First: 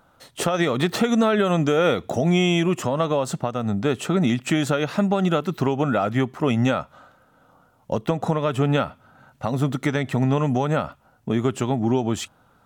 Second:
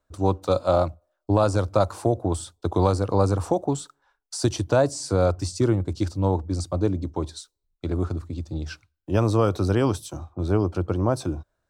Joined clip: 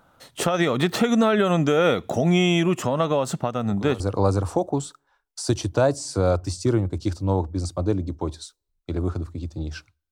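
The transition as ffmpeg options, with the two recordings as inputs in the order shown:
ffmpeg -i cue0.wav -i cue1.wav -filter_complex "[1:a]asplit=2[link_01][link_02];[0:a]apad=whole_dur=10.11,atrim=end=10.11,atrim=end=4.002[link_03];[link_02]atrim=start=2.948:end=9.06[link_04];[link_01]atrim=start=2.54:end=2.95,asetpts=PTS-STARTPTS,volume=-16dB,afade=type=in:duration=0.004:curve=hsin,afade=type=out:start_time=0.406:duration=0.004:curve=hsin,adelay=3590[link_05];[link_03][link_04]acrossfade=duration=0.004:curve1=hsin:curve2=hsin[link_06];[link_06][link_05]amix=inputs=2:normalize=0" out.wav

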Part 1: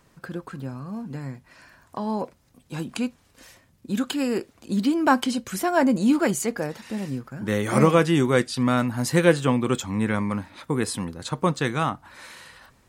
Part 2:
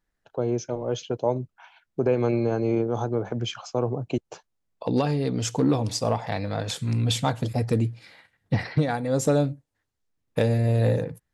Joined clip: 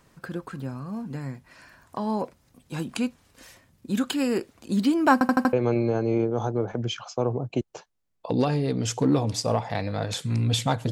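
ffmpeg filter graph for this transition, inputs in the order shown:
ffmpeg -i cue0.wav -i cue1.wav -filter_complex "[0:a]apad=whole_dur=10.91,atrim=end=10.91,asplit=5[link_01][link_02][link_03][link_04][link_05];[link_01]atrim=end=5.212[link_06];[link_02]atrim=start=5.128:end=5.212[link_07];[link_03]atrim=start=5.128:end=5.212[link_08];[link_04]atrim=start=5.128:end=5.212[link_09];[link_05]atrim=start=5.128:end=5.212[link_10];[1:a]atrim=start=2.098:end=7.48[link_11];[link_06][link_07]acrossfade=duration=0.004:curve1=hsin:curve2=hsin[link_12];[link_12][link_08]acrossfade=duration=0.004:curve1=hsin:curve2=hsin[link_13];[link_13][link_09]acrossfade=duration=0.004:curve1=hsin:curve2=hsin[link_14];[link_14][link_10]acrossfade=duration=0.004:curve1=hsin:curve2=hsin[link_15];[link_15][link_11]acrossfade=duration=0.004:curve1=hsin:curve2=hsin" out.wav

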